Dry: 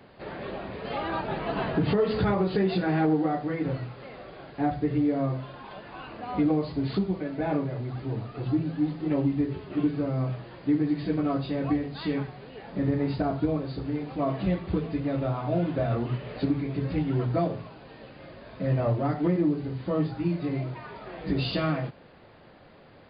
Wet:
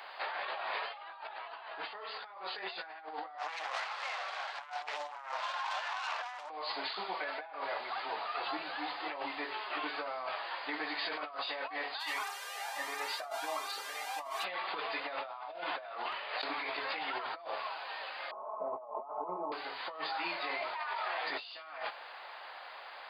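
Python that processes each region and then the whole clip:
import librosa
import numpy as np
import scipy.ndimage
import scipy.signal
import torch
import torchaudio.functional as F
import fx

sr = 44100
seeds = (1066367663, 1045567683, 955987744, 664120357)

y = fx.chain(x, sr, fx.self_delay(depth_ms=0.66),
    fx.highpass(hz=600.0, slope=12), at=(3.38, 6.5))
y = fx.low_shelf(y, sr, hz=420.0, db=-4.5, at=(11.99, 14.43), fade=0.02)
y = fx.dmg_buzz(y, sr, base_hz=400.0, harmonics=36, level_db=-48.0, tilt_db=-5, odd_only=False, at=(11.99, 14.43), fade=0.02)
y = fx.comb_cascade(y, sr, direction='rising', hz=1.4, at=(11.99, 14.43), fade=0.02)
y = fx.chain(y, sr, fx.gate_hold(open_db=-25.0, close_db=-36.0, hold_ms=71.0, range_db=-21, attack_ms=1.4, release_ms=100.0),
    fx.env_flatten(amount_pct=50), at=(16.12, 16.77))
y = fx.chain(y, sr, fx.ellip_lowpass(hz=1100.0, order=4, stop_db=40),
    fx.comb(ms=4.7, depth=0.78), at=(18.31, 19.52))
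y = scipy.signal.sosfilt(scipy.signal.cheby1(3, 1.0, 840.0, 'highpass', fs=sr, output='sos'), y)
y = fx.over_compress(y, sr, threshold_db=-47.0, ratio=-1.0)
y = y * 10.0 ** (6.5 / 20.0)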